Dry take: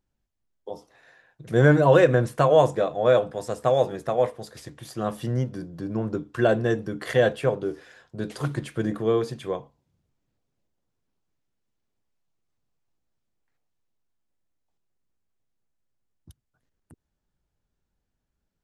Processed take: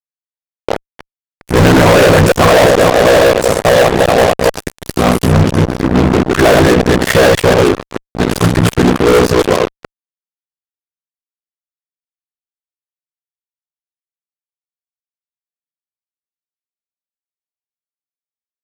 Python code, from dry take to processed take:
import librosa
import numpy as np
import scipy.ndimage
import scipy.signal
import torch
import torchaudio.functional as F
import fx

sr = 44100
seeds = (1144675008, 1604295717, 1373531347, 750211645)

y = fx.reverse_delay(x, sr, ms=145, wet_db=-3.0)
y = y * np.sin(2.0 * np.pi * 31.0 * np.arange(len(y)) / sr)
y = fx.fuzz(y, sr, gain_db=34.0, gate_db=-36.0)
y = y * 10.0 ** (8.5 / 20.0)